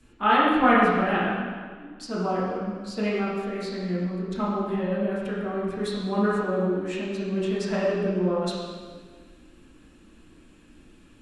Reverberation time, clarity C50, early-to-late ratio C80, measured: 1.6 s, -0.5 dB, 1.0 dB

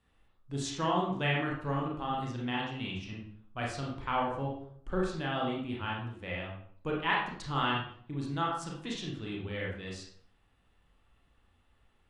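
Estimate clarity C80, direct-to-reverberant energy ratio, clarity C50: 6.5 dB, -3.0 dB, 2.5 dB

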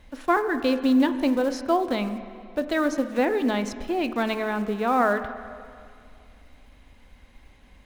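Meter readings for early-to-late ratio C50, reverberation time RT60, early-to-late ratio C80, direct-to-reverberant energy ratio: 11.0 dB, 2.3 s, 12.0 dB, 10.0 dB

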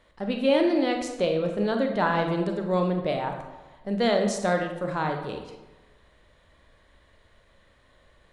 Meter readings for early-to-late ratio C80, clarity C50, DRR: 8.0 dB, 6.0 dB, 3.5 dB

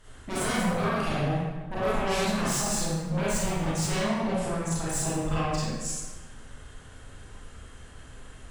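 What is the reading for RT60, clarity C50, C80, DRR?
1.3 s, -3.5 dB, 0.5 dB, -9.0 dB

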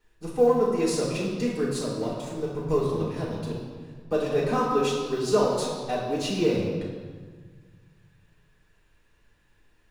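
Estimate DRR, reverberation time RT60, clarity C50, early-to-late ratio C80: -7.0 dB, 1.6 s, 1.0 dB, 3.0 dB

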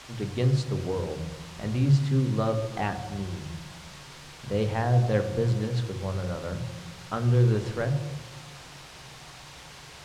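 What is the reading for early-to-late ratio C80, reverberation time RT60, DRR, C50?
12.0 dB, 1.2 s, 7.5 dB, 11.0 dB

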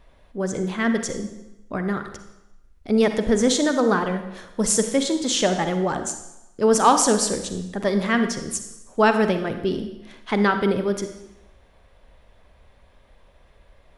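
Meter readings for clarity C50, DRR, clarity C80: 8.5 dB, 7.5 dB, 10.5 dB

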